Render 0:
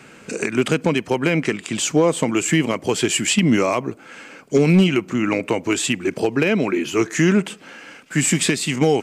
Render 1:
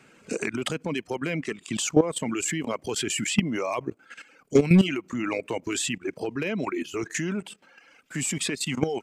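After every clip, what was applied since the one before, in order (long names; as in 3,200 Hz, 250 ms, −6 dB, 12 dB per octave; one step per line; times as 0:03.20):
reverb reduction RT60 1.2 s
output level in coarse steps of 14 dB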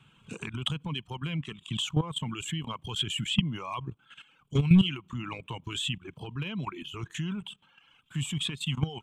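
drawn EQ curve 140 Hz 0 dB, 270 Hz −17 dB, 610 Hz −23 dB, 1,000 Hz −6 dB, 2,000 Hz −20 dB, 3,300 Hz +1 dB, 4,800 Hz −24 dB, 8,000 Hz −16 dB
level +5 dB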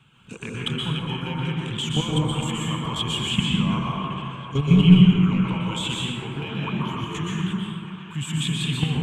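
delay with a band-pass on its return 718 ms, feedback 68%, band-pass 1,400 Hz, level −12 dB
dense smooth reverb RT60 2.4 s, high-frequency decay 0.35×, pre-delay 110 ms, DRR −5 dB
level +2 dB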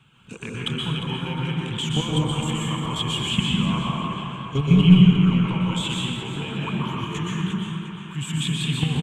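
repeating echo 353 ms, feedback 36%, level −10.5 dB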